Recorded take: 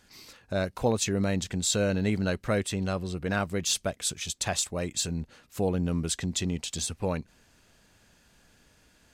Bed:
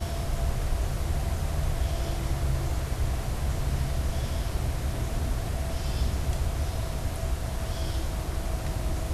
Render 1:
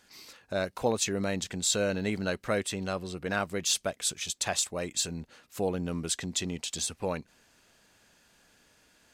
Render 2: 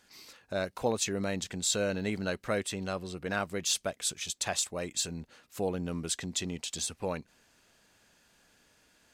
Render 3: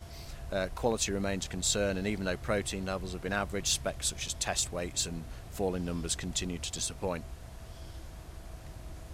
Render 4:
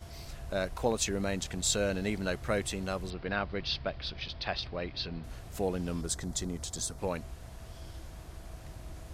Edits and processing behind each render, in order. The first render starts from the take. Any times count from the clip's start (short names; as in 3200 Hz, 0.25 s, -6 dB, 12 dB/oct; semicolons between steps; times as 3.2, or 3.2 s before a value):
low shelf 170 Hz -11.5 dB
gain -2 dB
add bed -15.5 dB
3.1–5.24 elliptic low-pass 4800 Hz; 6.01–6.99 bell 2700 Hz -14.5 dB 0.62 oct